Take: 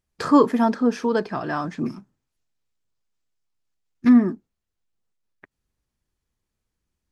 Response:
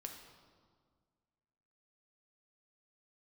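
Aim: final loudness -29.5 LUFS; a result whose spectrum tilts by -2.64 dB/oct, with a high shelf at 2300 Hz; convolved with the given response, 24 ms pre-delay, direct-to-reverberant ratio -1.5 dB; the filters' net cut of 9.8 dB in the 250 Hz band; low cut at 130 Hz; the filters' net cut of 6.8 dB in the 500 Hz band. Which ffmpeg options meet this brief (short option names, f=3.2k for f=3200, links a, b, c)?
-filter_complex "[0:a]highpass=130,equalizer=f=250:t=o:g=-9,equalizer=f=500:t=o:g=-5,highshelf=f=2.3k:g=-8.5,asplit=2[a][b];[1:a]atrim=start_sample=2205,adelay=24[c];[b][c]afir=irnorm=-1:irlink=0,volume=5dB[d];[a][d]amix=inputs=2:normalize=0,volume=-6dB"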